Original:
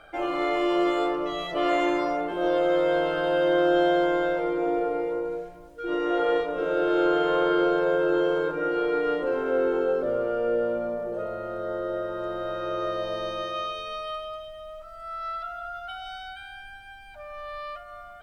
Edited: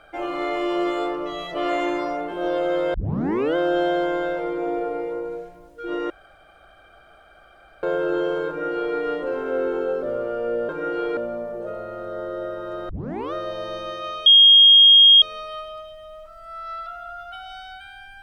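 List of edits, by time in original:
2.94 tape start 0.62 s
6.1–7.83 room tone
8.48–8.96 copy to 10.69
12.41 tape start 0.44 s
13.78 add tone 3250 Hz -7.5 dBFS 0.96 s

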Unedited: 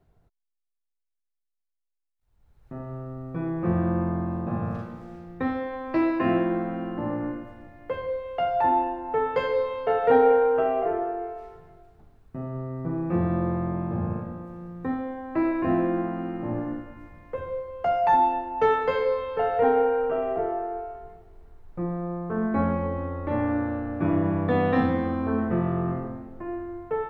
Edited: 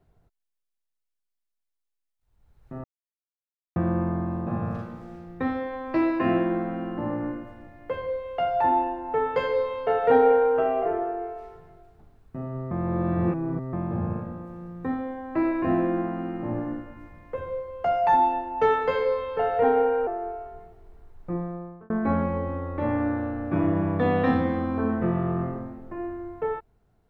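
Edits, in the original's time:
2.84–3.76 mute
12.71–13.73 reverse
20.07–20.56 cut
21.84–22.39 fade out

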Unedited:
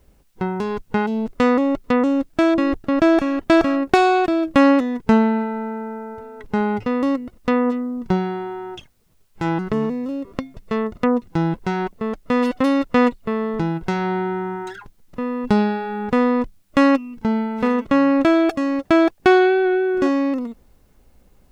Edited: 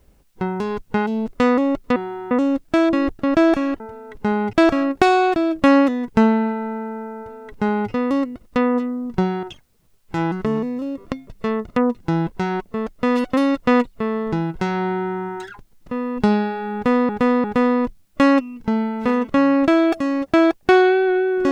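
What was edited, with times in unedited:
6.09–6.82 copy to 3.45
8.35–8.7 move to 1.96
16.01–16.36 loop, 3 plays

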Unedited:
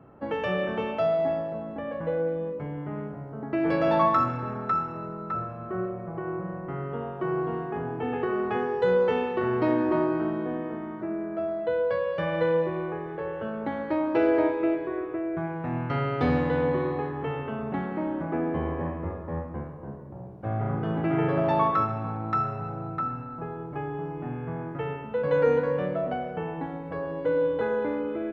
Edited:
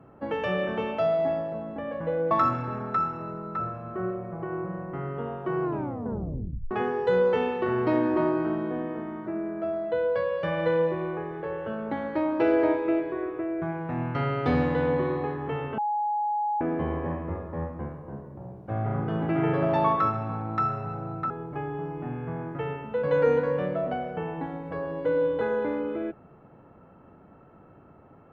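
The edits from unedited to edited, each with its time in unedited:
2.31–4.06 cut
7.38 tape stop 1.08 s
17.53–18.36 bleep 836 Hz -24 dBFS
23.05–23.5 cut

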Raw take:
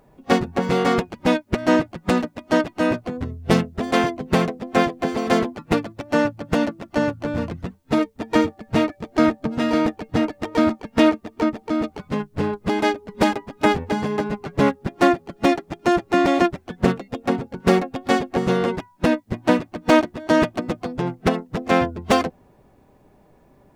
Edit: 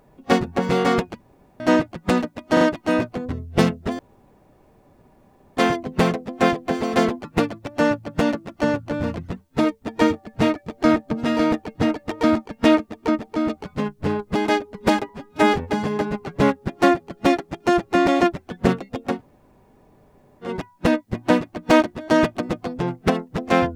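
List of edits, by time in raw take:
1.21–1.6 room tone
2.53 stutter 0.04 s, 3 plays
3.91 insert room tone 1.58 s
13.43–13.73 stretch 1.5×
17.33–18.68 room tone, crossfade 0.16 s

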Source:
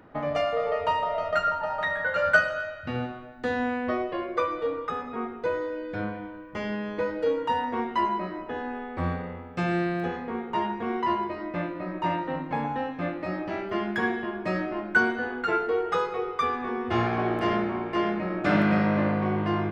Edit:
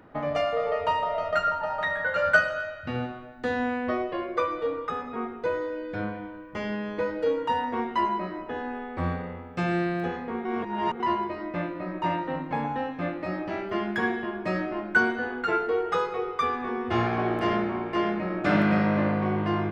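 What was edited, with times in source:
10.45–11 reverse

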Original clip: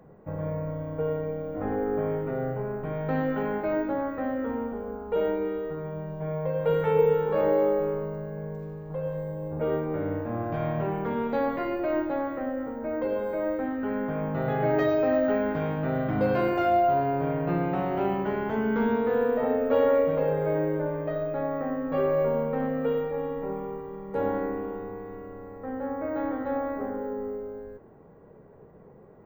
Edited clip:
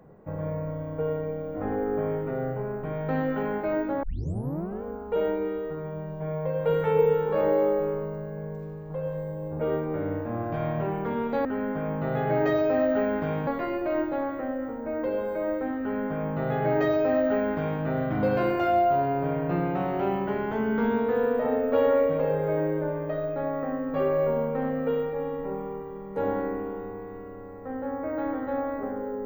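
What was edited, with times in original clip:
4.03 tape start 0.80 s
13.78–15.8 copy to 11.45

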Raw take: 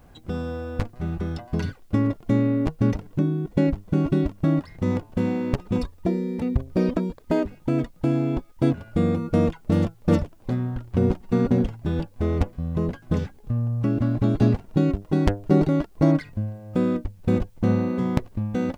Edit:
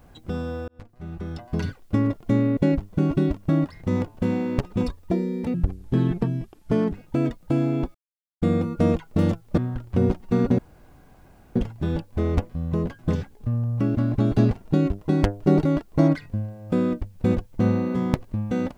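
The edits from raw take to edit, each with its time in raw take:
0.68–1.63 fade in linear
2.57–3.52 cut
6.49–7.46 speed 70%
8.48–8.95 mute
10.11–10.58 cut
11.59 insert room tone 0.97 s

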